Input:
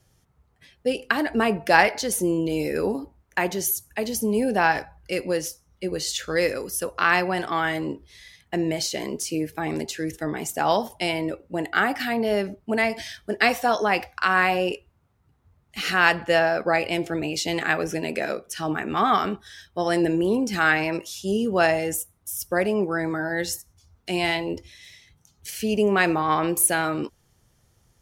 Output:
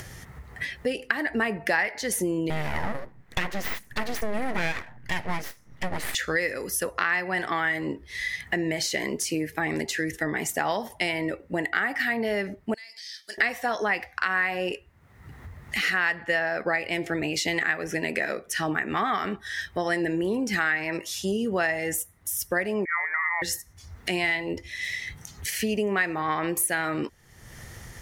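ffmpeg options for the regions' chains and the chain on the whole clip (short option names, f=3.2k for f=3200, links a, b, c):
-filter_complex "[0:a]asettb=1/sr,asplit=3[a][b][c];[a]atrim=end=2.504[d];[b]atrim=start=2.5:end=6.15,asetpts=PTS-STARTPTS,afade=t=in:d=0.004:c=qsin,afade=t=out:st=3.646:d=0.004:c=qsin,bass=f=250:g=5,treble=f=4k:g=-5,aeval=exprs='abs(val(0))':c=same[e];[c]atrim=start=6.146[f];[d][e]acrossfade=d=0.004:c1=hsin:c2=qsin[g];[g][f]acrossfade=d=0.004:c1=qsin:c2=hsin,asettb=1/sr,asplit=3[h][i][j];[h]atrim=end=12.744[k];[i]atrim=start=12.74:end=13.38,asetpts=PTS-STARTPTS,afade=t=in:d=0.004:c=qsin,afade=t=out:st=0.636:d=0.004:c=qsin,bandpass=f=4.7k:t=q:w=4.4,aemphasis=mode=production:type=50fm,acompressor=threshold=-46dB:ratio=5:attack=3.2:release=140:knee=1:detection=peak[l];[j]atrim=start=13.376[m];[k][l]acrossfade=d=0.004:c1=hsin:c2=qsin[n];[n][m]acrossfade=d=0.004:c1=qsin:c2=hsin,asettb=1/sr,asplit=3[o][p][q];[o]atrim=end=22.854[r];[p]atrim=start=22.85:end=23.42,asetpts=PTS-STARTPTS,afade=t=in:d=0.004:c=qsin,afade=t=out:st=0.566:d=0.004:c=qsin,highpass=f=660:w=0.5412,highpass=f=660:w=1.3066,lowpass=f=2.3k:t=q:w=0.5098,lowpass=f=2.3k:t=q:w=0.6013,lowpass=f=2.3k:t=q:w=0.9,lowpass=f=2.3k:t=q:w=2.563,afreqshift=-2700[s];[q]atrim=start=23.416[t];[r][s]acrossfade=d=0.004:c1=hsin:c2=qsin[u];[u][t]acrossfade=d=0.004:c1=qsin:c2=hsin,acompressor=mode=upward:threshold=-30dB:ratio=2.5,equalizer=f=1.9k:t=o:w=0.4:g=13,acompressor=threshold=-26dB:ratio=4,volume=2dB"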